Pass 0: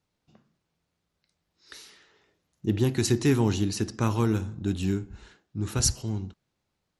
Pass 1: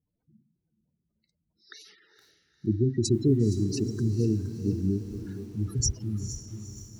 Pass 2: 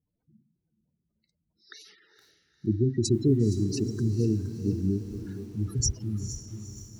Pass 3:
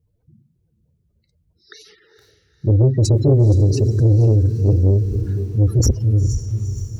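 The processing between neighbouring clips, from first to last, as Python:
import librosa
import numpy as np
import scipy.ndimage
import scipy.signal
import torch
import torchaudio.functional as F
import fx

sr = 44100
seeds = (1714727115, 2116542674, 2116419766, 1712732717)

y1 = fx.spec_gate(x, sr, threshold_db=-10, keep='strong')
y1 = fx.echo_diffused(y1, sr, ms=471, feedback_pct=55, wet_db=-13.0)
y1 = fx.echo_crushed(y1, sr, ms=468, feedback_pct=35, bits=8, wet_db=-13.5)
y2 = y1
y3 = fx.low_shelf_res(y2, sr, hz=150.0, db=13.0, q=1.5)
y3 = 10.0 ** (-15.0 / 20.0) * np.tanh(y3 / 10.0 ** (-15.0 / 20.0))
y3 = fx.peak_eq(y3, sr, hz=460.0, db=12.0, octaves=0.85)
y3 = F.gain(torch.from_numpy(y3), 5.0).numpy()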